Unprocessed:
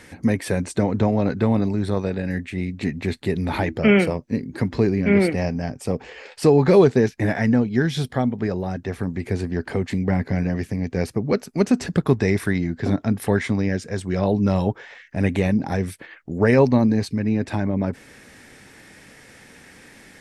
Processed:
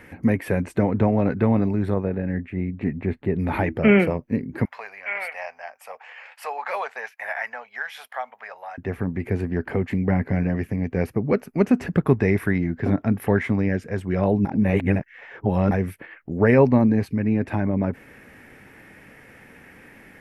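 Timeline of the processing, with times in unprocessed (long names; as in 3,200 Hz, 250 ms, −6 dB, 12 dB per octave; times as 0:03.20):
0:01.94–0:03.39: low-pass filter 1,200 Hz 6 dB per octave
0:04.65–0:08.78: inverse Chebyshev high-pass filter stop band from 360 Hz
0:14.45–0:15.71: reverse
whole clip: flat-topped bell 5,700 Hz −14 dB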